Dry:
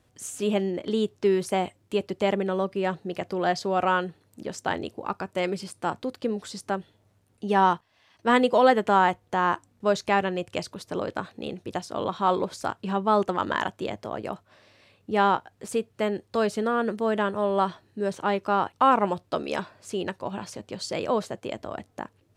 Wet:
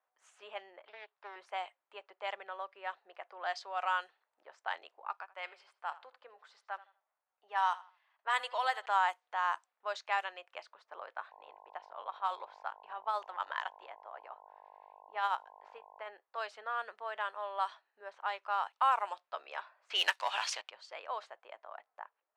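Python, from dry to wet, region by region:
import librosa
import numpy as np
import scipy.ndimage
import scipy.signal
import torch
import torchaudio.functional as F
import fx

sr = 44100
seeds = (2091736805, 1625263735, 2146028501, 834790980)

y = fx.chain(x, sr, fx.low_shelf(hz=420.0, db=-11.0),
    fx.resample_bad(factor=4, down='none', up='filtered'),
    fx.doppler_dist(depth_ms=0.31), at=(0.84, 1.36))
y = fx.chain(y, sr, fx.highpass(hz=570.0, slope=6),
    fx.echo_feedback(ms=81, feedback_pct=29, wet_db=-18.0), at=(5.16, 8.86))
y = fx.median_filter(y, sr, points=5, at=(11.3, 16.07), fade=0.02)
y = fx.tremolo(y, sr, hz=12.0, depth=0.48, at=(11.3, 16.07), fade=0.02)
y = fx.dmg_buzz(y, sr, base_hz=50.0, harmonics=21, level_db=-41.0, tilt_db=-2, odd_only=False, at=(11.3, 16.07), fade=0.02)
y = fx.chain(y, sr, fx.peak_eq(hz=2900.0, db=12.0, octaves=2.2),
    fx.leveller(passes=2), at=(19.9, 20.7))
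y = scipy.signal.sosfilt(scipy.signal.butter(4, 770.0, 'highpass', fs=sr, output='sos'), y)
y = fx.env_lowpass(y, sr, base_hz=1200.0, full_db=-20.0)
y = fx.high_shelf(y, sr, hz=8400.0, db=4.0)
y = F.gain(torch.from_numpy(y), -7.5).numpy()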